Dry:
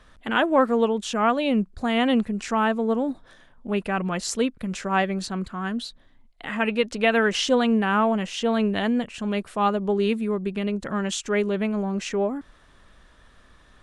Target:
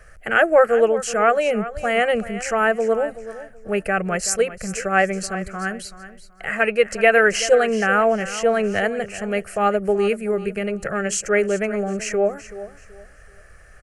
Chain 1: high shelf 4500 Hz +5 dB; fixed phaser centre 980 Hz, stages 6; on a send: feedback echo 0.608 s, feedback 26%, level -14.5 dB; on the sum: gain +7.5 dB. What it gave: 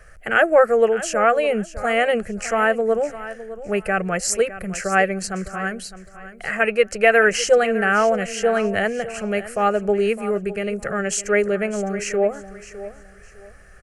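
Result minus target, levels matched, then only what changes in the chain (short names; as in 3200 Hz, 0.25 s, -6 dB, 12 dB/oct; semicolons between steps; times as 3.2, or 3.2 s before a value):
echo 0.229 s late
change: feedback echo 0.379 s, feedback 26%, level -14.5 dB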